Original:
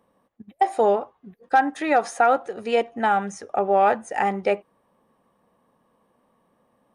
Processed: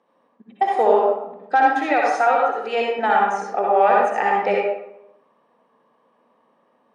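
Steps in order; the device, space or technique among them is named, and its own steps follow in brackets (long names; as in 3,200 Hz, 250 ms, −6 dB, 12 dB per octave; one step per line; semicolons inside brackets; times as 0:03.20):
supermarket ceiling speaker (band-pass filter 290–5,200 Hz; convolution reverb RT60 0.85 s, pre-delay 56 ms, DRR −3.5 dB)
0:01.93–0:02.99: parametric band 210 Hz −5.5 dB 2.5 octaves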